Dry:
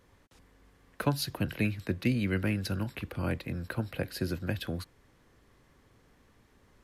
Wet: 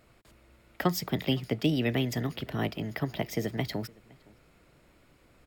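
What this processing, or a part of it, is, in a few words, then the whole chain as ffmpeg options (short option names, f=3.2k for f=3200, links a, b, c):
nightcore: -filter_complex "[0:a]equalizer=f=79:t=o:w=0.33:g=-5,bandreject=f=4.8k:w=9.1,asplit=2[a][b];[b]adelay=641.4,volume=-25dB,highshelf=f=4k:g=-14.4[c];[a][c]amix=inputs=2:normalize=0,asetrate=55125,aresample=44100,volume=2dB"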